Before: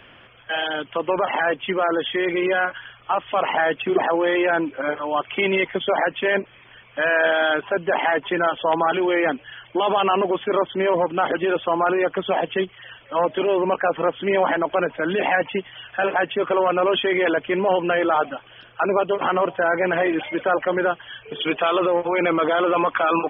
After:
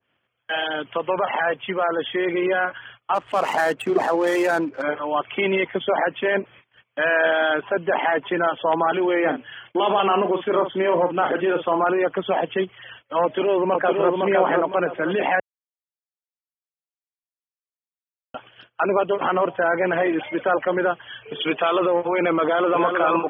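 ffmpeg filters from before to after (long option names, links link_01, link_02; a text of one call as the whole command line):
ffmpeg -i in.wav -filter_complex "[0:a]asettb=1/sr,asplit=3[link_01][link_02][link_03];[link_01]atrim=end=0.984[link_04];[link_02]atrim=start=0.98:end=1.99,asetpts=PTS-STARTPTS,afade=type=in:duration=0.004:curve=qsin,afade=type=out:start_time=1.006:duration=0.004:curve=qsin,equalizer=frequency=300:width=2.3:gain=-7[link_05];[link_03]atrim=start=1.986[link_06];[link_04][link_05]acrossfade=duration=0.004:curve1=hsin:curve2=qsin[link_07];[link_07][link_06]acrossfade=duration=0.004:curve1=qsin:curve2=hsin,asplit=3[link_08][link_09][link_10];[link_08]afade=type=out:start_time=3.14:duration=0.02[link_11];[link_09]adynamicsmooth=sensitivity=5:basefreq=1200,afade=type=in:start_time=3.14:duration=0.02,afade=type=out:start_time=4.81:duration=0.02[link_12];[link_10]afade=type=in:start_time=4.81:duration=0.02[link_13];[link_11][link_12][link_13]amix=inputs=3:normalize=0,asettb=1/sr,asplit=3[link_14][link_15][link_16];[link_14]atrim=end=9.204[link_17];[link_15]atrim=start=9.2:end=11.84,asetpts=PTS-STARTPTS,afade=type=in:duration=0.004:curve=qsin,afade=type=out:start_time=2.636:duration=0.004:curve=qsin,asplit=2[link_18][link_19];[link_19]adelay=45,volume=-9dB[link_20];[link_18][link_20]amix=inputs=2:normalize=0,atrim=end_sample=116424[link_21];[link_16]atrim=start=11.836[link_22];[link_17][link_21]acrossfade=duration=0.004:curve1=hsin:curve2=qsin[link_23];[link_23][link_22]acrossfade=duration=0.004:curve1=qsin:curve2=hsin,asplit=2[link_24][link_25];[link_25]afade=type=in:start_time=13.23:duration=0.01,afade=type=out:start_time=14.14:duration=0.01,aecho=0:1:510|1020|1530|2040:0.749894|0.224968|0.0674905|0.0202471[link_26];[link_24][link_26]amix=inputs=2:normalize=0,asplit=2[link_27][link_28];[link_28]afade=type=in:start_time=22.43:duration=0.01,afade=type=out:start_time=22.85:duration=0.01,aecho=0:1:310|620|930:0.562341|0.0843512|0.0126527[link_29];[link_27][link_29]amix=inputs=2:normalize=0,asplit=3[link_30][link_31][link_32];[link_30]atrim=end=15.4,asetpts=PTS-STARTPTS,afade=type=out:start_time=15.396:duration=0.004:curve=hsin[link_33];[link_31]atrim=start=15.4:end=18.34,asetpts=PTS-STARTPTS,volume=0[link_34];[link_32]atrim=start=18.34,asetpts=PTS-STARTPTS,afade=type=in:duration=0.004:curve=hsin[link_35];[link_33][link_34][link_35]concat=n=3:v=0:a=1,highpass=77,agate=range=-26dB:threshold=-44dB:ratio=16:detection=peak,adynamicequalizer=threshold=0.0158:dfrequency=3000:dqfactor=0.89:tfrequency=3000:tqfactor=0.89:attack=5:release=100:ratio=0.375:range=2:mode=cutabove:tftype=bell" out.wav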